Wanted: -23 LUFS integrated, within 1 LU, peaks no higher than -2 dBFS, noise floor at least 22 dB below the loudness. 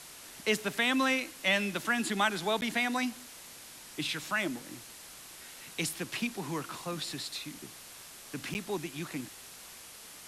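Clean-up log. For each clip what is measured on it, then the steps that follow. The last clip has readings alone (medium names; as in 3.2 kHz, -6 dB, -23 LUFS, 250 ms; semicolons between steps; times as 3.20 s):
dropouts 2; longest dropout 9.8 ms; noise floor -50 dBFS; noise floor target -55 dBFS; loudness -32.5 LUFS; peak level -14.5 dBFS; loudness target -23.0 LUFS
-> interpolate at 2.61/8.54 s, 9.8 ms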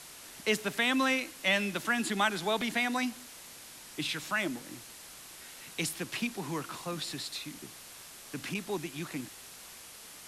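dropouts 0; noise floor -50 dBFS; noise floor target -55 dBFS
-> noise print and reduce 6 dB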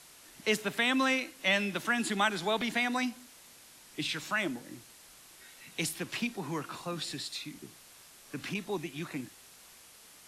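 noise floor -56 dBFS; loudness -32.5 LUFS; peak level -14.5 dBFS; loudness target -23.0 LUFS
-> trim +9.5 dB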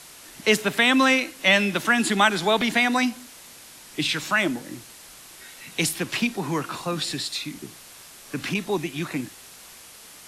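loudness -22.5 LUFS; peak level -5.0 dBFS; noise floor -46 dBFS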